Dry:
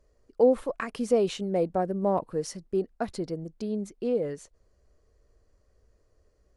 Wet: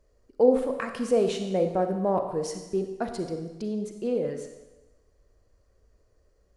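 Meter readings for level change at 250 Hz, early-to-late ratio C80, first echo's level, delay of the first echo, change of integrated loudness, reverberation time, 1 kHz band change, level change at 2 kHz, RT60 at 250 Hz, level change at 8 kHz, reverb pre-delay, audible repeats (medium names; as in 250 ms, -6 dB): +1.0 dB, 9.0 dB, no echo, no echo, +1.0 dB, 1.1 s, +1.0 dB, +1.0 dB, 1.0 s, +1.0 dB, 34 ms, no echo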